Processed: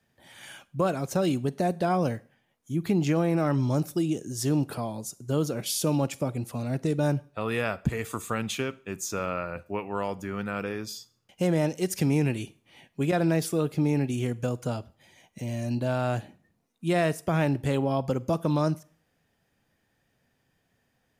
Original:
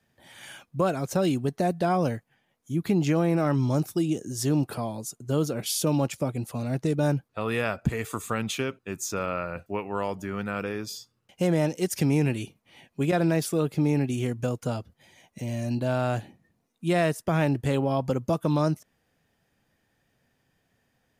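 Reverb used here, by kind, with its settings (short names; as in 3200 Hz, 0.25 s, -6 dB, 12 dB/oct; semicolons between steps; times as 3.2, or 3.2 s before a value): Schroeder reverb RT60 0.45 s, combs from 33 ms, DRR 20 dB; gain -1 dB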